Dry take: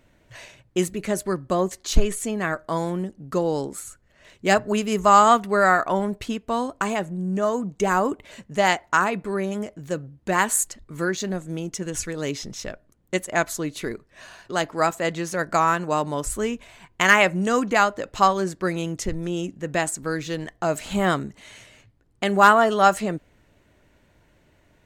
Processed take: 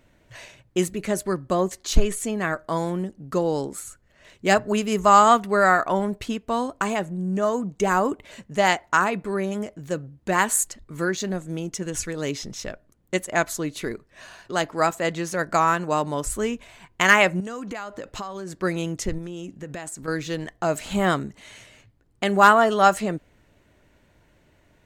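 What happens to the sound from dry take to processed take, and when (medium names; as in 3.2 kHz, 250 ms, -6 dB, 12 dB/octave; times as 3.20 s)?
17.40–18.59 s: compression 10:1, threshold -29 dBFS
19.18–20.08 s: compression 10:1, threshold -30 dBFS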